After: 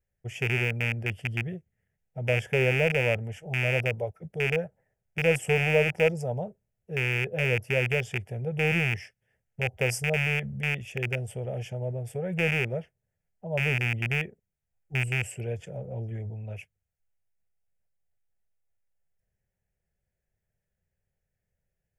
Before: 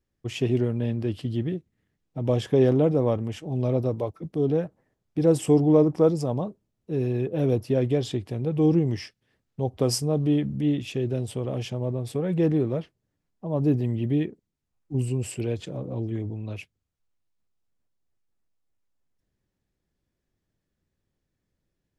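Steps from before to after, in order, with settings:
loose part that buzzes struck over −23 dBFS, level −12 dBFS
phaser with its sweep stopped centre 1,100 Hz, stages 6
level −1 dB

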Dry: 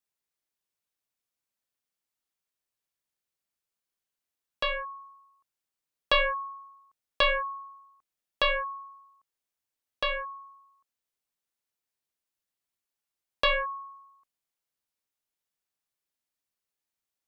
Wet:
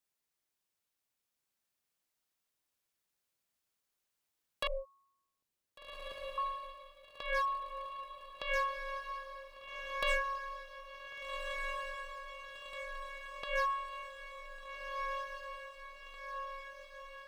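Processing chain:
compressor whose output falls as the input rises −29 dBFS, ratio −0.5
hard clipping −27.5 dBFS, distortion −16 dB
0:04.67–0:06.38: inverse Chebyshev low-pass filter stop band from 1,500 Hz, stop band 50 dB
feedback delay with all-pass diffusion 1,557 ms, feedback 64%, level −4 dB
level −2 dB

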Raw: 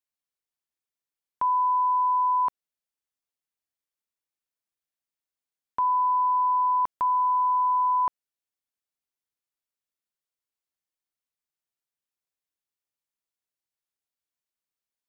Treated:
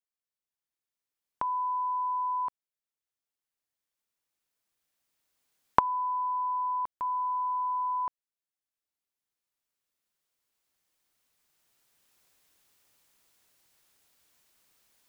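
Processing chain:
camcorder AGC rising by 7.3 dB per second
level −7.5 dB

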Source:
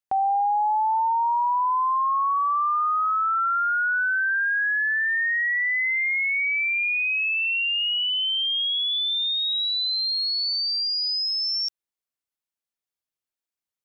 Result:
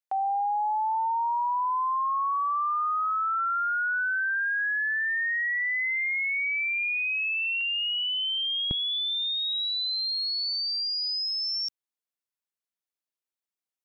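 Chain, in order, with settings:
high-pass filter 550 Hz 12 dB per octave, from 0:07.61 1,100 Hz, from 0:08.71 190 Hz
level −4 dB

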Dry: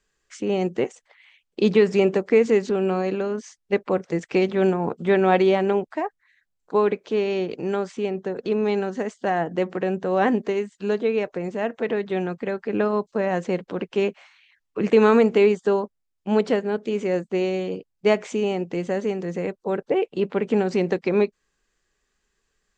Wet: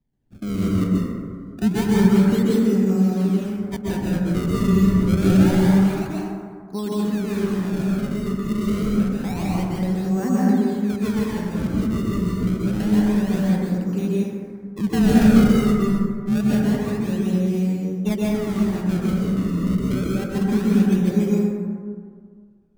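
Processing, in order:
sample-and-hold swept by an LFO 31×, swing 160% 0.27 Hz
low shelf with overshoot 310 Hz +13 dB, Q 1.5
dense smooth reverb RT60 1.9 s, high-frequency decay 0.35×, pre-delay 115 ms, DRR −5.5 dB
level −12.5 dB

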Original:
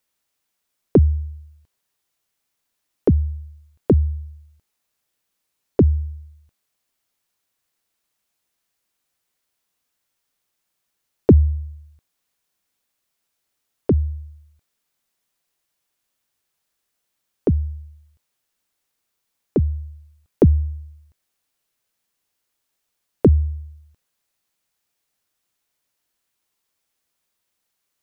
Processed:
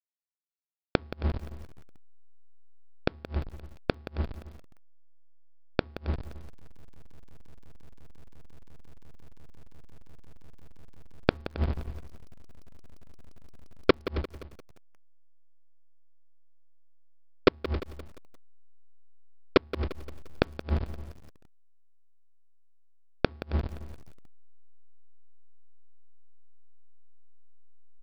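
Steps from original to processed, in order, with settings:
each half-wave held at its own peak
in parallel at +2.5 dB: downward compressor 5 to 1, threshold −21 dBFS, peak gain reduction 13.5 dB
on the sum: coupled-rooms reverb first 0.37 s, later 3.9 s, from −18 dB, DRR 0 dB
slack as between gear wheels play −8 dBFS
gate with flip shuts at −2 dBFS, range −41 dB
on a send: single-tap delay 270 ms −17 dB
on the sum: downsampling to 11,025 Hz
feedback echo at a low word length 174 ms, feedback 55%, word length 6 bits, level −13.5 dB
level −4.5 dB

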